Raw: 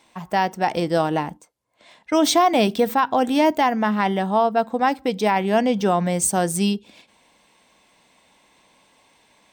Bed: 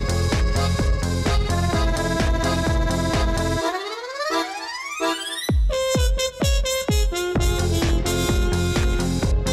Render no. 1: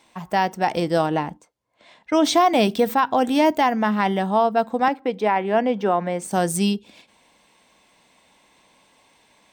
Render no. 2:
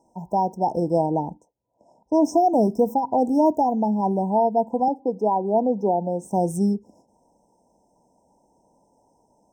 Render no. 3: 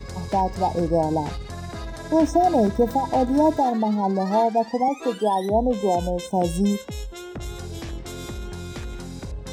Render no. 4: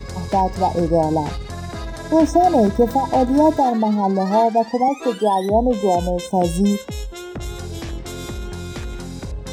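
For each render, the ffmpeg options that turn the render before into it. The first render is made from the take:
-filter_complex "[0:a]asettb=1/sr,asplit=3[a][b][c];[a]atrim=end=1.064[d];[b]atrim=start=1.06:end=2.34,asetpts=PTS-STARTPTS,afade=t=in:d=0.004:c=qsin,afade=t=out:st=1.276:d=0.004:c=qsin,highshelf=f=8.5k:g=-11.5[e];[c]atrim=start=2.336[f];[d][e]acrossfade=d=0.004:c1=hsin:c2=qsin[g];[g][f]acrossfade=d=0.004:c1=qsin:c2=hsin,asettb=1/sr,asplit=3[h][i][j];[h]atrim=end=4.884[k];[i]atrim=start=4.88:end=6.31,asetpts=PTS-STARTPTS,afade=t=in:d=0.004:c=qsin,afade=t=out:st=1.426:d=0.004:c=qsin,acrossover=split=200 2800:gain=0.0708 1 0.178[l][m][n];[l][m][n]amix=inputs=3:normalize=0[o];[j]atrim=start=6.306[p];[k][o]acrossfade=d=0.004:c1=hsin:c2=qsin[q];[q][p]acrossfade=d=0.004:c1=qsin:c2=hsin"
-af "afftfilt=real='re*(1-between(b*sr/4096,1000,5100))':imag='im*(1-between(b*sr/4096,1000,5100))':win_size=4096:overlap=0.75,highshelf=f=2.8k:g=-12"
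-filter_complex "[1:a]volume=-13dB[a];[0:a][a]amix=inputs=2:normalize=0"
-af "volume=4dB"

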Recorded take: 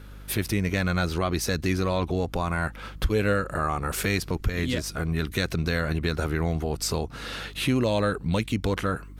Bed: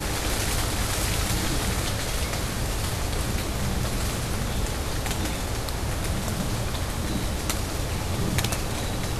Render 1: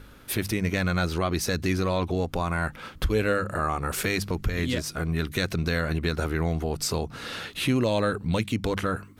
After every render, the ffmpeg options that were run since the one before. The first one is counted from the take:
-af "bandreject=f=50:t=h:w=4,bandreject=f=100:t=h:w=4,bandreject=f=150:t=h:w=4,bandreject=f=200:t=h:w=4"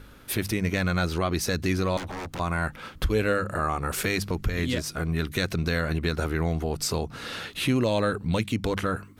-filter_complex "[0:a]asettb=1/sr,asplit=3[a][b][c];[a]atrim=end=1.974[d];[b]atrim=start=1.97:end=2.4,asetpts=PTS-STARTPTS,afade=t=in:d=0.004:c=qsin,afade=t=out:st=0.426:d=0.004:c=qsin,aeval=exprs='0.0335*(abs(mod(val(0)/0.0335+3,4)-2)-1)':c=same[e];[c]atrim=start=2.396[f];[d][e]acrossfade=d=0.004:c1=hsin:c2=qsin[g];[g][f]acrossfade=d=0.004:c1=qsin:c2=hsin"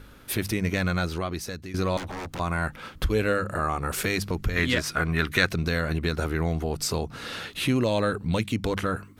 -filter_complex "[0:a]asettb=1/sr,asplit=3[a][b][c];[a]atrim=end=4.564[d];[b]atrim=start=4.56:end=5.49,asetpts=PTS-STARTPTS,afade=t=in:d=0.004:c=qsin,afade=t=out:st=0.926:d=0.004:c=qsin,equalizer=f=1.6k:w=0.6:g=9.5[e];[c]atrim=start=5.486[f];[d][e]acrossfade=d=0.004:c1=hsin:c2=qsin[g];[g][f]acrossfade=d=0.004:c1=qsin:c2=hsin,asplit=2[h][i];[h]atrim=end=1.74,asetpts=PTS-STARTPTS,afade=t=out:st=0.87:d=0.87:silence=0.16788[j];[i]atrim=start=1.74,asetpts=PTS-STARTPTS,afade=t=in:d=0.004:c=hsin:silence=0.16788[k];[j][k]concat=n=2:v=0:a=1"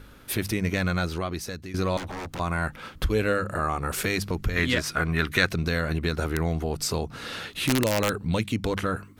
-filter_complex "[0:a]asettb=1/sr,asplit=3[a][b][c];[a]atrim=end=6.174[d];[b]atrim=start=6.17:end=8.25,asetpts=PTS-STARTPTS,afade=t=in:d=0.004:c=qsin,afade=t=out:st=2.076:d=0.004:c=qsin,aeval=exprs='(mod(5.62*val(0)+1,2)-1)/5.62':c=same[e];[c]atrim=start=8.246[f];[d][e]acrossfade=d=0.004:c1=hsin:c2=qsin[g];[g][f]acrossfade=d=0.004:c1=qsin:c2=hsin"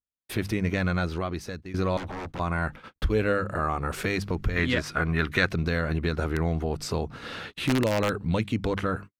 -af "agate=range=-56dB:threshold=-38dB:ratio=16:detection=peak,lowpass=f=2.8k:p=1"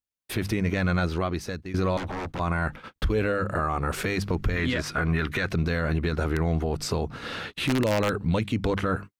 -af "dynaudnorm=f=160:g=3:m=3dB,alimiter=limit=-16.5dB:level=0:latency=1:release=10"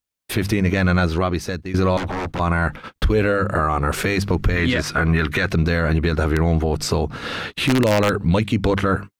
-af "volume=7dB"

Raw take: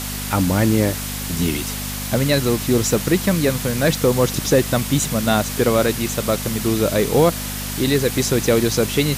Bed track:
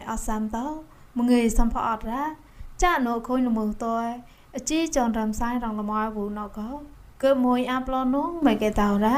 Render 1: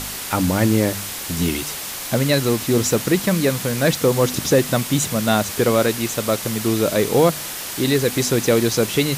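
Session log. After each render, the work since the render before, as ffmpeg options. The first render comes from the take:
-af "bandreject=f=50:t=h:w=4,bandreject=f=100:t=h:w=4,bandreject=f=150:t=h:w=4,bandreject=f=200:t=h:w=4,bandreject=f=250:t=h:w=4"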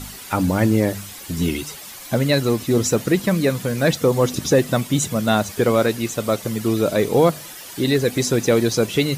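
-af "afftdn=nr=11:nf=-30"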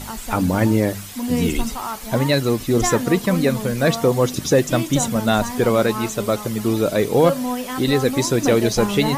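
-filter_complex "[1:a]volume=-3dB[a];[0:a][a]amix=inputs=2:normalize=0"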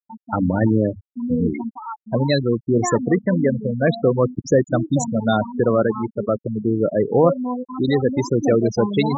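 -af "highpass=f=81:w=0.5412,highpass=f=81:w=1.3066,afftfilt=real='re*gte(hypot(re,im),0.224)':imag='im*gte(hypot(re,im),0.224)':win_size=1024:overlap=0.75"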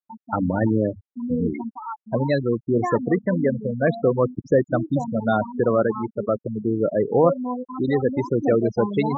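-af "lowpass=2k,lowshelf=f=390:g=-4.5"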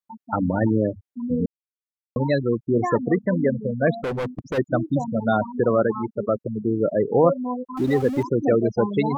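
-filter_complex "[0:a]asplit=3[a][b][c];[a]afade=t=out:st=3.95:d=0.02[d];[b]asoftclip=type=hard:threshold=-23.5dB,afade=t=in:st=3.95:d=0.02,afade=t=out:st=4.57:d=0.02[e];[c]afade=t=in:st=4.57:d=0.02[f];[d][e][f]amix=inputs=3:normalize=0,asettb=1/sr,asplit=3[g][h][i];[g]atrim=end=7.774[j];[h]atrim=start=7.77:end=8.23,asetpts=PTS-STARTPTS,afade=t=in:d=0.004:c=qsin,afade=t=out:st=0.456:d=0.004:c=qsin,aeval=exprs='val(0)+0.5*0.0211*sgn(val(0))':c=same[k];[i]atrim=start=8.226[l];[j][k]acrossfade=d=0.004:c1=hsin:c2=qsin[m];[m][l]acrossfade=d=0.004:c1=qsin:c2=hsin,asplit=3[n][o][p];[n]atrim=end=1.46,asetpts=PTS-STARTPTS,afade=t=out:st=1.456:d=0.004:c=hsin[q];[o]atrim=start=1.46:end=2.16,asetpts=PTS-STARTPTS,volume=0[r];[p]atrim=start=2.16,asetpts=PTS-STARTPTS,afade=t=in:d=0.004:c=hsin[s];[q][r][s]concat=n=3:v=0:a=1"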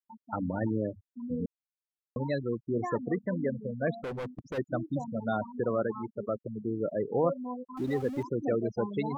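-af "volume=-10dB"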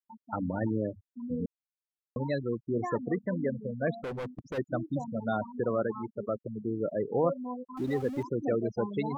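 -af anull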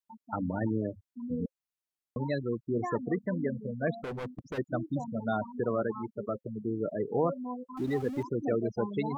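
-af "bandreject=f=530:w=12"

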